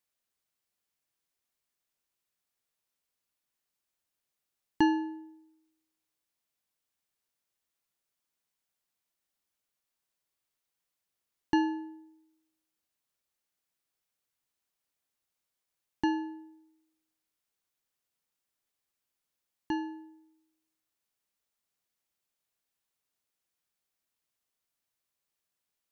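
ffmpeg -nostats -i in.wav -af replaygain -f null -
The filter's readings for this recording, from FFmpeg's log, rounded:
track_gain = +27.9 dB
track_peak = 0.169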